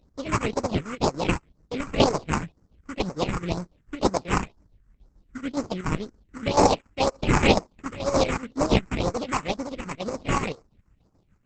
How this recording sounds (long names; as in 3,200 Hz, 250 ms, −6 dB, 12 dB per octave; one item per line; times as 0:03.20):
aliases and images of a low sample rate 1,700 Hz, jitter 20%
phaser sweep stages 4, 2 Hz, lowest notch 580–3,200 Hz
chopped level 7 Hz, depth 60%, duty 65%
Opus